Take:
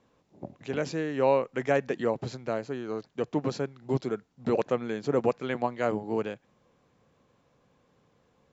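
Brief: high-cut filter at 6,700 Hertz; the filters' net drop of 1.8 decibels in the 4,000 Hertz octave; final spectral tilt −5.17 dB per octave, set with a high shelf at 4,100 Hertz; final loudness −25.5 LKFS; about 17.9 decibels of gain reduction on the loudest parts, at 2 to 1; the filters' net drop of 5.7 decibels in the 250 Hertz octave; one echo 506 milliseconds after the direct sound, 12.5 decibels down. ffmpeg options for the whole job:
ffmpeg -i in.wav -af "lowpass=6700,equalizer=frequency=250:width_type=o:gain=-7.5,equalizer=frequency=4000:width_type=o:gain=-3.5,highshelf=frequency=4100:gain=3,acompressor=threshold=-55dB:ratio=2,aecho=1:1:506:0.237,volume=22dB" out.wav

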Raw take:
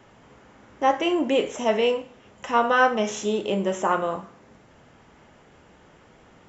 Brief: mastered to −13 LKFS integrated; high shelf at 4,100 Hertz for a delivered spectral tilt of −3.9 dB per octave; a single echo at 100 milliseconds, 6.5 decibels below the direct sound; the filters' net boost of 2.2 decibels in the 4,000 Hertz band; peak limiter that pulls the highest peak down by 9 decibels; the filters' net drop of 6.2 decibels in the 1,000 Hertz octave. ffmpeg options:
ffmpeg -i in.wav -af "equalizer=frequency=1000:width_type=o:gain=-8.5,equalizer=frequency=4000:width_type=o:gain=7,highshelf=frequency=4100:gain=-4.5,alimiter=limit=-19.5dB:level=0:latency=1,aecho=1:1:100:0.473,volume=15.5dB" out.wav

